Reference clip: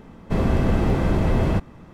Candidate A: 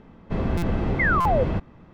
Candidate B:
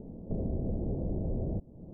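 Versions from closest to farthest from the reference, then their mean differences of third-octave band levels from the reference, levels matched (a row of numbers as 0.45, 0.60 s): A, B; 4.5, 12.0 dB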